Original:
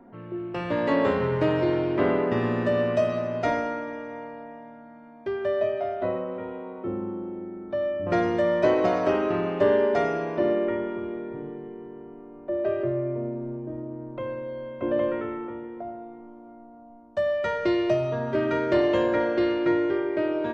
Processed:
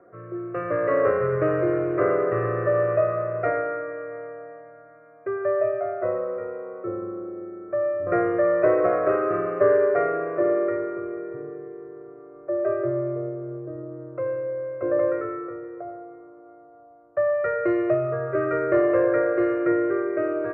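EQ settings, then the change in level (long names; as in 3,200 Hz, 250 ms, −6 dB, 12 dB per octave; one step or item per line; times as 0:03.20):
loudspeaker in its box 100–2,500 Hz, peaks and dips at 120 Hz +7 dB, 330 Hz +5 dB, 500 Hz +6 dB, 760 Hz +3 dB, 1,200 Hz +10 dB
phaser with its sweep stopped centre 890 Hz, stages 6
0.0 dB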